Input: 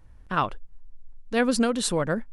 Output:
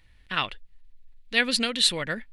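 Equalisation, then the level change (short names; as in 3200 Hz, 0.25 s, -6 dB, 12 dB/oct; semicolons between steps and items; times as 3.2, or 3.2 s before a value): band shelf 2700 Hz +15 dB; high shelf 4100 Hz +9.5 dB; notch 1600 Hz, Q 14; -7.5 dB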